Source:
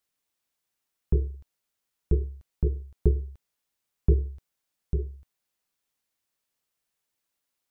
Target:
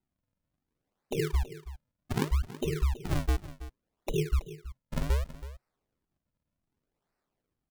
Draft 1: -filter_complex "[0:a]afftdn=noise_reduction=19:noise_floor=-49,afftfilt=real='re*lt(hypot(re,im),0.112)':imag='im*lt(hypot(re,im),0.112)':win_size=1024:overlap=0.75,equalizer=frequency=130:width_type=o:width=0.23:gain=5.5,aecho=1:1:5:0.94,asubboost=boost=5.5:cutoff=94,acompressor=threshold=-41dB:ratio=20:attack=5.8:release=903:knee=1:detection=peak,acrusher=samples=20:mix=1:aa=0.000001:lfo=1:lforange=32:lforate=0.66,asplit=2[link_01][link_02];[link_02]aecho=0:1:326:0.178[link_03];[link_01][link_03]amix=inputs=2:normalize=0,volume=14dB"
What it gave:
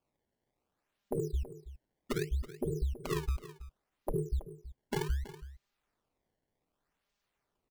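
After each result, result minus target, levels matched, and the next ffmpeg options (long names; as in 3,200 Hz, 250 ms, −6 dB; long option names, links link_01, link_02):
downward compressor: peak gain reduction +6 dB; sample-and-hold swept by an LFO: distortion −7 dB
-filter_complex "[0:a]afftdn=noise_reduction=19:noise_floor=-49,afftfilt=real='re*lt(hypot(re,im),0.112)':imag='im*lt(hypot(re,im),0.112)':win_size=1024:overlap=0.75,equalizer=frequency=130:width_type=o:width=0.23:gain=5.5,aecho=1:1:5:0.94,asubboost=boost=5.5:cutoff=94,acompressor=threshold=-34.5dB:ratio=20:attack=5.8:release=903:knee=1:detection=peak,acrusher=samples=20:mix=1:aa=0.000001:lfo=1:lforange=32:lforate=0.66,asplit=2[link_01][link_02];[link_02]aecho=0:1:326:0.178[link_03];[link_01][link_03]amix=inputs=2:normalize=0,volume=14dB"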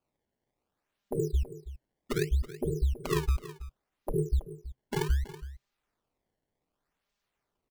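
sample-and-hold swept by an LFO: distortion −8 dB
-filter_complex "[0:a]afftdn=noise_reduction=19:noise_floor=-49,afftfilt=real='re*lt(hypot(re,im),0.112)':imag='im*lt(hypot(re,im),0.112)':win_size=1024:overlap=0.75,equalizer=frequency=130:width_type=o:width=0.23:gain=5.5,aecho=1:1:5:0.94,asubboost=boost=5.5:cutoff=94,acompressor=threshold=-34.5dB:ratio=20:attack=5.8:release=903:knee=1:detection=peak,acrusher=samples=65:mix=1:aa=0.000001:lfo=1:lforange=104:lforate=0.66,asplit=2[link_01][link_02];[link_02]aecho=0:1:326:0.178[link_03];[link_01][link_03]amix=inputs=2:normalize=0,volume=14dB"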